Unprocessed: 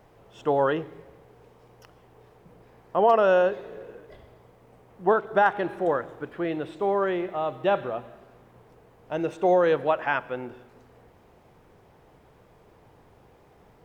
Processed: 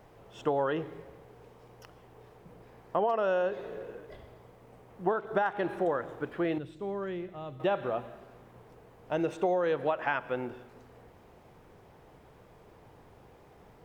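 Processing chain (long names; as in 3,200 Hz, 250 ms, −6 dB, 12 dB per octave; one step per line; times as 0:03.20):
0:06.58–0:07.60: drawn EQ curve 130 Hz 0 dB, 760 Hz −16 dB, 5,700 Hz −7 dB
downward compressor 6 to 1, threshold −25 dBFS, peak gain reduction 10.5 dB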